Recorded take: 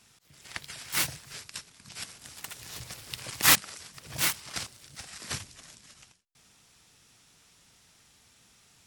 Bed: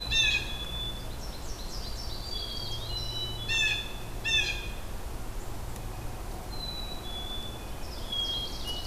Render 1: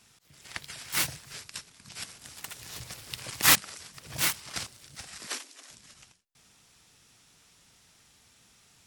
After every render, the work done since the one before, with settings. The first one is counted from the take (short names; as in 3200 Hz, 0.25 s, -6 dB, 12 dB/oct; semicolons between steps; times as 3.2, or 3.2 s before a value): 5.27–5.7 steep high-pass 250 Hz 96 dB/oct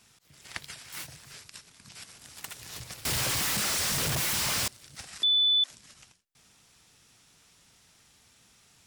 0.74–2.36 compressor 2:1, threshold -46 dBFS; 3.05–4.68 infinite clipping; 5.23–5.64 bleep 3490 Hz -20 dBFS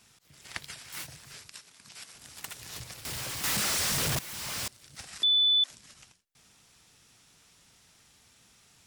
1.52–2.15 low shelf 190 Hz -11 dB; 2.83–3.44 compressor, threshold -38 dBFS; 4.19–5.13 fade in, from -16.5 dB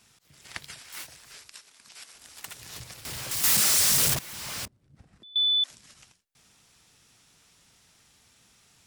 0.82–2.46 bell 130 Hz -11.5 dB 1.5 oct; 3.31–4.14 high shelf 4700 Hz +11 dB; 4.65–5.36 EQ curve 230 Hz 0 dB, 730 Hz -12 dB, 5300 Hz -29 dB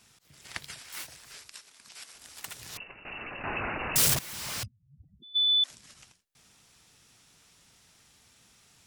2.77–3.96 inverted band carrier 2800 Hz; 4.63–5.49 spectral contrast raised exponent 3.9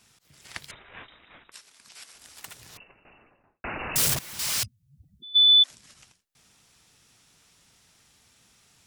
0.71–1.52 inverted band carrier 3800 Hz; 2.25–3.64 studio fade out; 4.39–5.63 high shelf 2100 Hz +10.5 dB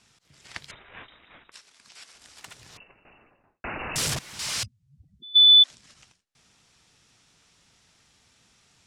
LPF 7600 Hz 12 dB/oct; dynamic EQ 3700 Hz, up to +3 dB, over -29 dBFS, Q 2.4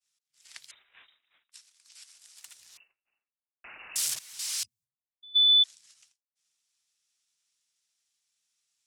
pre-emphasis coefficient 0.97; expander -57 dBFS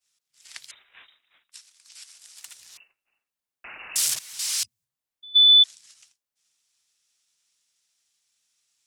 gain +6 dB